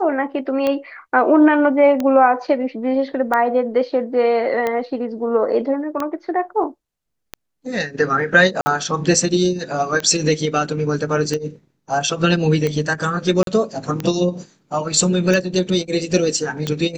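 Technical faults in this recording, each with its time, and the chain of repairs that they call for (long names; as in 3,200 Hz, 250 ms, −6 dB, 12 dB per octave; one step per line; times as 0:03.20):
scratch tick 45 rpm −9 dBFS
0:08.61–0:08.66: drop-out 50 ms
0:13.43–0:13.47: drop-out 42 ms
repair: click removal
repair the gap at 0:08.61, 50 ms
repair the gap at 0:13.43, 42 ms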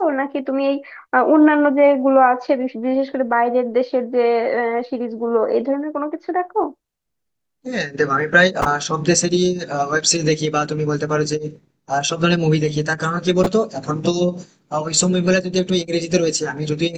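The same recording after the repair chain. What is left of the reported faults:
none of them is left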